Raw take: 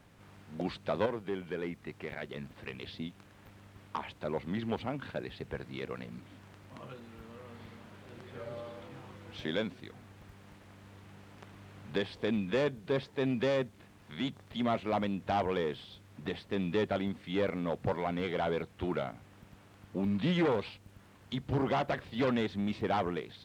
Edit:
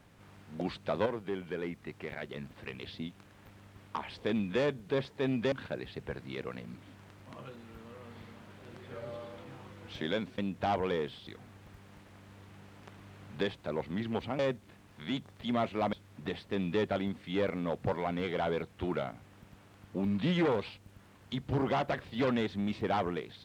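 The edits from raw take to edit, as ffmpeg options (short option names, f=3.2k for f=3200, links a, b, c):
-filter_complex "[0:a]asplit=8[a][b][c][d][e][f][g][h];[a]atrim=end=4.102[i];[b]atrim=start=12.078:end=13.502[j];[c]atrim=start=4.958:end=9.822[k];[d]atrim=start=15.038:end=15.932[l];[e]atrim=start=9.818:end=12.082[m];[f]atrim=start=4.098:end=4.962[n];[g]atrim=start=13.498:end=15.042[o];[h]atrim=start=15.928[p];[i][j]acrossfade=d=0.004:c1=hsin:c2=hsin[q];[q][k]acrossfade=d=0.004:c1=hsin:c2=hsin[r];[r][l]acrossfade=d=0.004:c1=hsin:c2=hsin[s];[s][m]acrossfade=d=0.004:c1=hsin:c2=hsin[t];[t][n]acrossfade=d=0.004:c1=hsin:c2=hsin[u];[u][o]acrossfade=d=0.004:c1=hsin:c2=hsin[v];[v][p]acrossfade=d=0.004:c1=hsin:c2=hsin"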